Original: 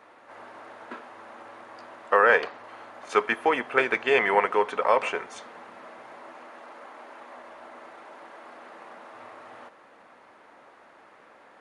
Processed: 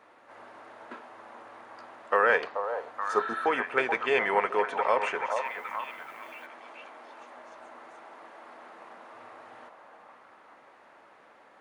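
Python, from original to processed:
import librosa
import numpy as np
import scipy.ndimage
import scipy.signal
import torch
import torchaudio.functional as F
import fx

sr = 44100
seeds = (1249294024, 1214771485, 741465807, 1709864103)

y = fx.echo_stepped(x, sr, ms=431, hz=730.0, octaves=0.7, feedback_pct=70, wet_db=-3.5)
y = fx.spec_repair(y, sr, seeds[0], start_s=3.14, length_s=0.3, low_hz=1300.0, high_hz=4300.0, source='before')
y = fx.dmg_noise_colour(y, sr, seeds[1], colour='blue', level_db=-62.0, at=(5.44, 6.45), fade=0.02)
y = y * 10.0 ** (-4.0 / 20.0)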